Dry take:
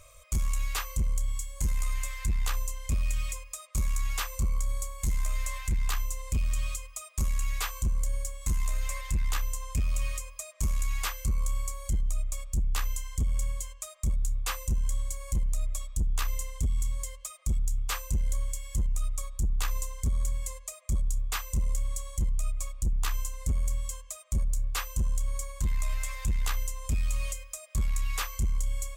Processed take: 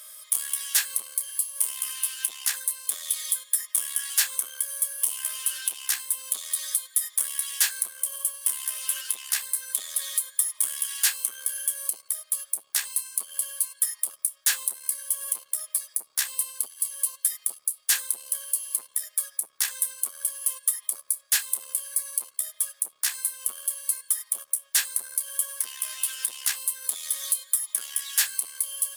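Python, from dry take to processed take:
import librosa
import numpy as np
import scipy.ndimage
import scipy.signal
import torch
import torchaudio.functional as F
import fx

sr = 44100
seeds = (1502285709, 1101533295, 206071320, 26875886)

y = np.repeat(x[::2], 2)[:len(x)]
y = fx.formant_shift(y, sr, semitones=6)
y = scipy.signal.sosfilt(scipy.signal.bessel(4, 990.0, 'highpass', norm='mag', fs=sr, output='sos'), y)
y = fx.peak_eq(y, sr, hz=9700.0, db=14.5, octaves=1.7)
y = F.gain(torch.from_numpy(y), 3.5).numpy()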